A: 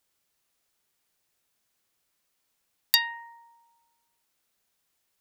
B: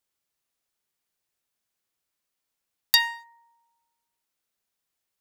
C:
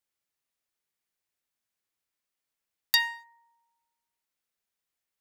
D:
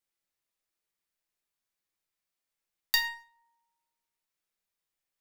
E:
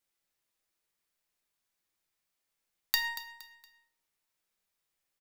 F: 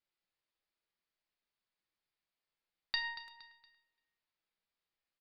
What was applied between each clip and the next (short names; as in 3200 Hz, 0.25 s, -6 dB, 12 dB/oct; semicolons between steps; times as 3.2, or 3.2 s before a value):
sample leveller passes 2; gain -3 dB
bell 2000 Hz +3 dB; gain -5 dB
reverb RT60 0.35 s, pre-delay 6 ms, DRR 3.5 dB; gain -3 dB
compressor 6:1, threshold -29 dBFS, peak gain reduction 8.5 dB; feedback echo 0.233 s, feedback 36%, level -14 dB; gain +3.5 dB
downsampling 11025 Hz; speakerphone echo 0.34 s, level -20 dB; gain -5 dB